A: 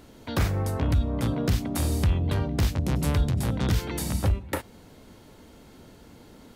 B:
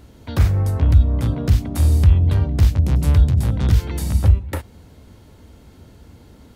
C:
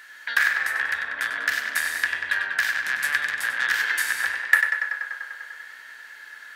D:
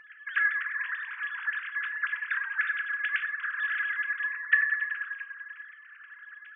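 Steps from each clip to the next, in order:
parametric band 73 Hz +13 dB 1.5 octaves
in parallel at −6 dB: soft clipping −16.5 dBFS, distortion −8 dB; on the sum: high-pass with resonance 1,700 Hz, resonance Q 15; tape delay 97 ms, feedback 85%, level −4.5 dB, low-pass 4,500 Hz
three sine waves on the formant tracks; rectangular room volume 490 cubic metres, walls furnished, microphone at 0.77 metres; level −6.5 dB

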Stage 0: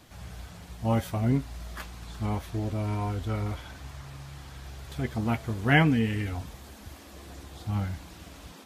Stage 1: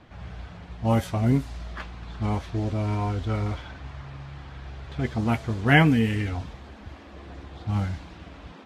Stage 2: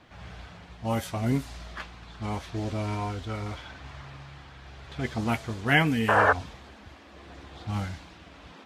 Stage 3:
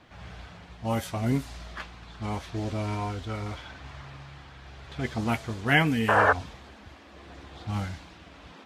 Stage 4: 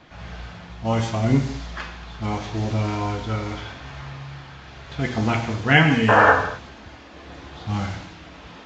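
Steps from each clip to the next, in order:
low-pass that shuts in the quiet parts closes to 2,400 Hz, open at −20.5 dBFS; level +3.5 dB
spectral tilt +1.5 dB per octave; sound drawn into the spectrogram noise, 0:06.08–0:06.33, 410–1,800 Hz −19 dBFS; shaped tremolo triangle 0.82 Hz, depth 35%
no processing that can be heard
reverb whose tail is shaped and stops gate 280 ms falling, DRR 3 dB; downsampling to 16,000 Hz; level +5 dB

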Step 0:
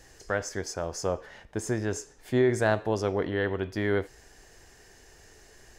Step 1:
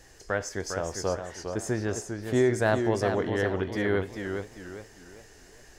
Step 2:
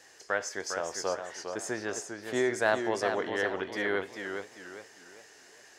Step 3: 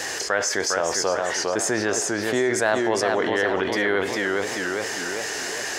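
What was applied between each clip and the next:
feedback echo with a swinging delay time 404 ms, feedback 37%, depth 126 cents, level −6.5 dB
meter weighting curve A
envelope flattener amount 70%; level +3.5 dB

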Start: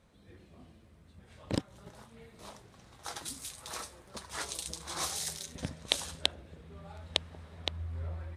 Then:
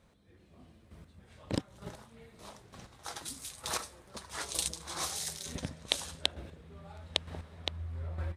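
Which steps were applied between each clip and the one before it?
square-wave tremolo 1.1 Hz, depth 60%, duty 15%
automatic gain control gain up to 7 dB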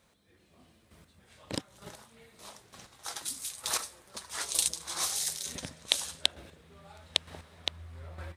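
spectral tilt +2 dB per octave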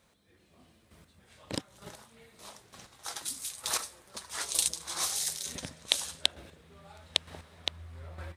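no processing that can be heard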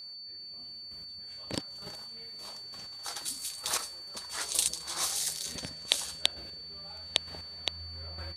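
steady tone 4,500 Hz −42 dBFS

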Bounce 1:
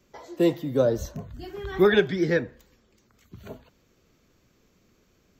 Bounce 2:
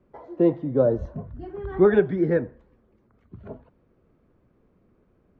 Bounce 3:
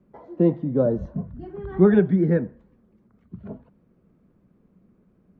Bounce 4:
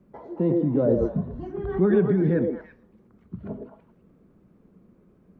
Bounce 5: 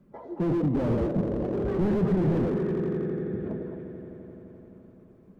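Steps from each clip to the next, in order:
low-pass filter 1,100 Hz 12 dB per octave; level +2 dB
parametric band 190 Hz +12 dB 0.76 octaves; level −2.5 dB
in parallel at +0.5 dB: compressor whose output falls as the input rises −22 dBFS, ratio −0.5; on the sum: echo through a band-pass that steps 110 ms, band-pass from 390 Hz, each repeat 1.4 octaves, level 0 dB; level −6.5 dB
spectral magnitudes quantised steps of 15 dB; echo that builds up and dies away 86 ms, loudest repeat 5, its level −15.5 dB; slew-rate limiting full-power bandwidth 22 Hz

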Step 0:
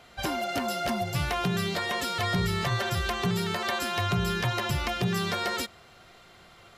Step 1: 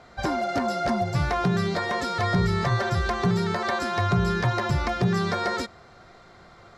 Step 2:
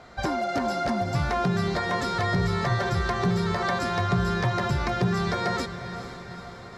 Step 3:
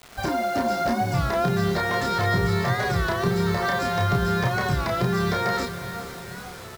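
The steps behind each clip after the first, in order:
low-pass filter 4,900 Hz 12 dB per octave; parametric band 2,900 Hz −13.5 dB 0.65 octaves; level +5 dB
in parallel at +1 dB: downward compressor, threshold −30 dBFS, peak gain reduction 11.5 dB; on the sum: feedback delay with all-pass diffusion 458 ms, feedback 59%, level −11 dB; level −4.5 dB
double-tracking delay 30 ms −3 dB; bit reduction 7 bits; wow of a warped record 33 1/3 rpm, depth 100 cents

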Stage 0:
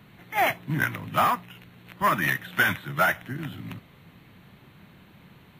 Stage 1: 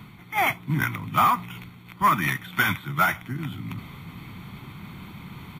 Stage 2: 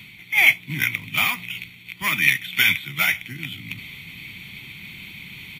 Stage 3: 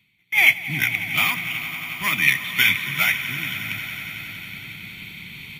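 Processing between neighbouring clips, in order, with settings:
comb filter 0.9 ms, depth 59%; reversed playback; upward compression, threshold −30 dBFS; reversed playback
high shelf with overshoot 1,700 Hz +12 dB, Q 3; level −5.5 dB
noise gate with hold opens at −31 dBFS; echo that builds up and dies away 91 ms, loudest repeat 5, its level −16.5 dB

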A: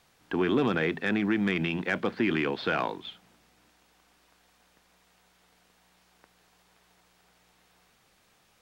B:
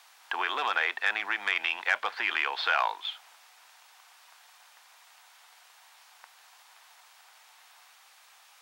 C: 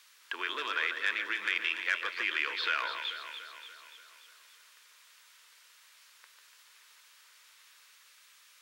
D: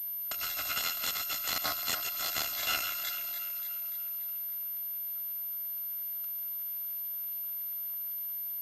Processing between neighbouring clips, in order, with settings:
Chebyshev high-pass filter 830 Hz, order 3; in parallel at 0 dB: downward compressor, threshold −42 dBFS, peak gain reduction 16 dB; on the sum: level +3.5 dB
phaser with its sweep stopped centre 320 Hz, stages 4; delay that swaps between a low-pass and a high-pass 145 ms, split 1,700 Hz, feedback 74%, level −6 dB; level −1.5 dB
samples in bit-reversed order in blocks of 256 samples; switching amplifier with a slow clock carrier 13,000 Hz; level +2.5 dB

